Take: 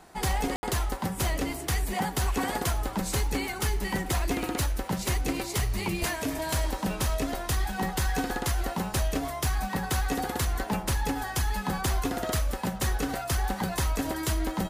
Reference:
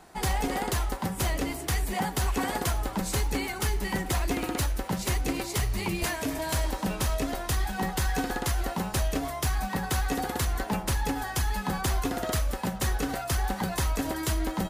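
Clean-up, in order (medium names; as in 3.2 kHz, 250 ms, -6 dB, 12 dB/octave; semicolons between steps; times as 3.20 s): room tone fill 0.56–0.63 s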